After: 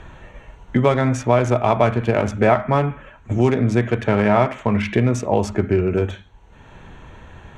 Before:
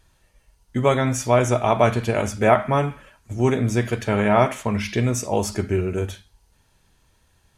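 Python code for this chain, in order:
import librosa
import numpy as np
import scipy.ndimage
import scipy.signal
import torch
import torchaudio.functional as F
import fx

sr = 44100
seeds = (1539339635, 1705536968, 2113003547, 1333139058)

y = fx.wiener(x, sr, points=9)
y = fx.air_absorb(y, sr, metres=68.0)
y = fx.band_squash(y, sr, depth_pct=70)
y = y * librosa.db_to_amplitude(2.5)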